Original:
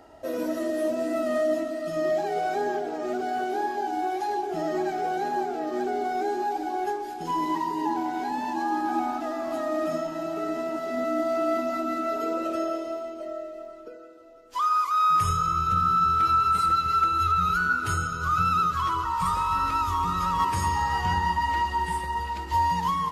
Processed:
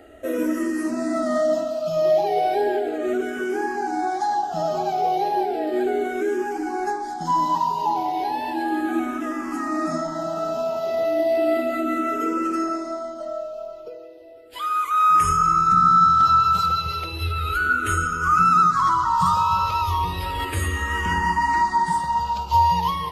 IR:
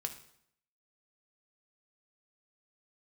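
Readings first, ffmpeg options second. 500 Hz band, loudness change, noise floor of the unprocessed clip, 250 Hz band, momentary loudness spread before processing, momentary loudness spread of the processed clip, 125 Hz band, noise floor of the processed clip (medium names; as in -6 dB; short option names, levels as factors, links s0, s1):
+4.5 dB, +4.5 dB, -40 dBFS, +4.5 dB, 9 LU, 11 LU, +3.5 dB, -35 dBFS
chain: -filter_complex "[0:a]asplit=2[s0][s1];[s1]afreqshift=-0.34[s2];[s0][s2]amix=inputs=2:normalize=1,volume=2.37"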